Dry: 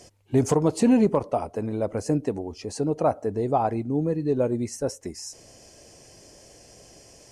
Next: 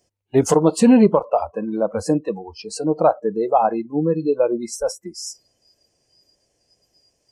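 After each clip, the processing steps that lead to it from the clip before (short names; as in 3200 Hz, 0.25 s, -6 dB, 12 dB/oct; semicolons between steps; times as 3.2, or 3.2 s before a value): spectral noise reduction 25 dB; gain +7 dB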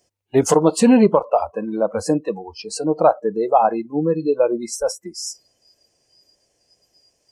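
low shelf 330 Hz -5 dB; gain +2.5 dB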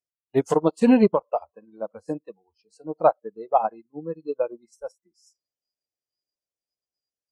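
upward expander 2.5:1, over -30 dBFS; gain -2 dB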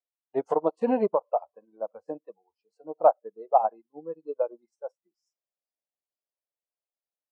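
band-pass 700 Hz, Q 1.5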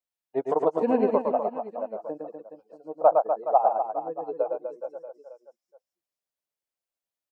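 reverse bouncing-ball echo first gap 0.11 s, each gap 1.25×, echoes 5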